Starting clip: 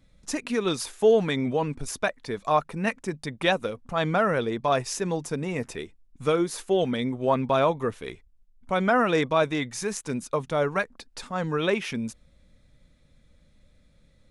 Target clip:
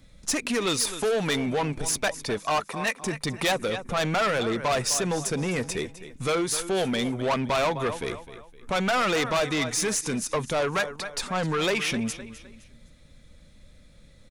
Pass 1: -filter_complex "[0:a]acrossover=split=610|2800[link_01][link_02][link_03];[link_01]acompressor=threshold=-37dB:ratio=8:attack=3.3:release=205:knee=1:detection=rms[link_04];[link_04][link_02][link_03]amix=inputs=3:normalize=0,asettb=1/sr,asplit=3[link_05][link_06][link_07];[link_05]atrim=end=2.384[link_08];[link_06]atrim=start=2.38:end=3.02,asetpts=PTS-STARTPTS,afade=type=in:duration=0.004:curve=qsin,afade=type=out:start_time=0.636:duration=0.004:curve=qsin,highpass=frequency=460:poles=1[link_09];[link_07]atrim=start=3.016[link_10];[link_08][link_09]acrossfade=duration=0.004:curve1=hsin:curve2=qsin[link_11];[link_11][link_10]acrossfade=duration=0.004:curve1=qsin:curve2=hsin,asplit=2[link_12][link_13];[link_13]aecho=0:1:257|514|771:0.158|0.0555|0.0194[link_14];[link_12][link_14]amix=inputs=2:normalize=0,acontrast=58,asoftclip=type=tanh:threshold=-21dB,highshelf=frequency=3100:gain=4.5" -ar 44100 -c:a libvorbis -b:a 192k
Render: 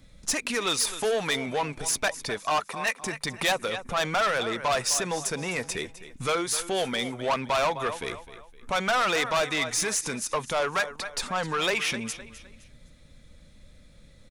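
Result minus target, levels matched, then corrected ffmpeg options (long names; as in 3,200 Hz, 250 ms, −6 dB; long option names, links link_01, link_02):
downward compressor: peak gain reduction +9 dB
-filter_complex "[0:a]acrossover=split=610|2800[link_01][link_02][link_03];[link_01]acompressor=threshold=-27dB:ratio=8:attack=3.3:release=205:knee=1:detection=rms[link_04];[link_04][link_02][link_03]amix=inputs=3:normalize=0,asettb=1/sr,asplit=3[link_05][link_06][link_07];[link_05]atrim=end=2.384[link_08];[link_06]atrim=start=2.38:end=3.02,asetpts=PTS-STARTPTS,afade=type=in:duration=0.004:curve=qsin,afade=type=out:start_time=0.636:duration=0.004:curve=qsin,highpass=frequency=460:poles=1[link_09];[link_07]atrim=start=3.016[link_10];[link_08][link_09]acrossfade=duration=0.004:curve1=hsin:curve2=qsin[link_11];[link_11][link_10]acrossfade=duration=0.004:curve1=qsin:curve2=hsin,asplit=2[link_12][link_13];[link_13]aecho=0:1:257|514|771:0.158|0.0555|0.0194[link_14];[link_12][link_14]amix=inputs=2:normalize=0,acontrast=58,asoftclip=type=tanh:threshold=-21dB,highshelf=frequency=3100:gain=4.5" -ar 44100 -c:a libvorbis -b:a 192k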